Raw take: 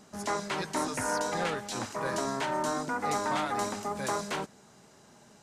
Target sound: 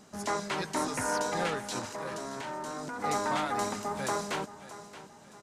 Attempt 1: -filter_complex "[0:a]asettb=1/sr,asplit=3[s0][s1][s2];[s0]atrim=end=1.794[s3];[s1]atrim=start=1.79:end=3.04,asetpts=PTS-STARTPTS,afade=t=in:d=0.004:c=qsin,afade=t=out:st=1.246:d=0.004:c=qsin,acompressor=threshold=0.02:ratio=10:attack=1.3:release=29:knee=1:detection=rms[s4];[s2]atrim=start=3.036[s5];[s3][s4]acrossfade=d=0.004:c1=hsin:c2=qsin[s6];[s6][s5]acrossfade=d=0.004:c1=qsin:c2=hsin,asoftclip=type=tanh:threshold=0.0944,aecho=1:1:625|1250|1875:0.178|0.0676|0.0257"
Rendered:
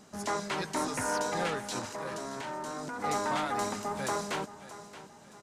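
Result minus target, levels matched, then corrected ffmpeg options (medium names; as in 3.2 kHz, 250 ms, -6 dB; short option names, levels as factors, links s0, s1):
saturation: distortion +15 dB
-filter_complex "[0:a]asettb=1/sr,asplit=3[s0][s1][s2];[s0]atrim=end=1.794[s3];[s1]atrim=start=1.79:end=3.04,asetpts=PTS-STARTPTS,afade=t=in:d=0.004:c=qsin,afade=t=out:st=1.246:d=0.004:c=qsin,acompressor=threshold=0.02:ratio=10:attack=1.3:release=29:knee=1:detection=rms[s4];[s2]atrim=start=3.036[s5];[s3][s4]acrossfade=d=0.004:c1=hsin:c2=qsin[s6];[s6][s5]acrossfade=d=0.004:c1=qsin:c2=hsin,asoftclip=type=tanh:threshold=0.251,aecho=1:1:625|1250|1875:0.178|0.0676|0.0257"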